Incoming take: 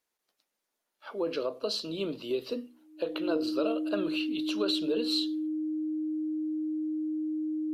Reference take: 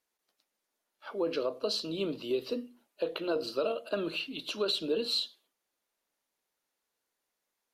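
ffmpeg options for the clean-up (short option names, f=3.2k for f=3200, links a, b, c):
-af "bandreject=f=310:w=30"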